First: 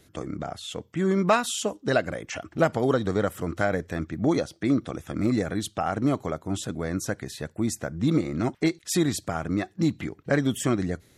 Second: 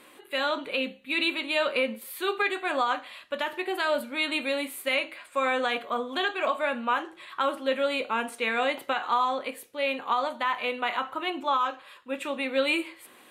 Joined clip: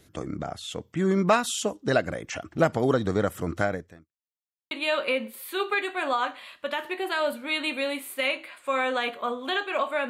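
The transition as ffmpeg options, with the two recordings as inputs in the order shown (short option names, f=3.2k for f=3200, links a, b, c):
-filter_complex "[0:a]apad=whole_dur=10.09,atrim=end=10.09,asplit=2[a][b];[a]atrim=end=4.12,asetpts=PTS-STARTPTS,afade=t=out:st=3.62:d=0.5:c=qua[c];[b]atrim=start=4.12:end=4.71,asetpts=PTS-STARTPTS,volume=0[d];[1:a]atrim=start=1.39:end=6.77,asetpts=PTS-STARTPTS,afade=t=in:d=0.004:c=hsin[e];[c][d][e]concat=n=3:v=0:a=1"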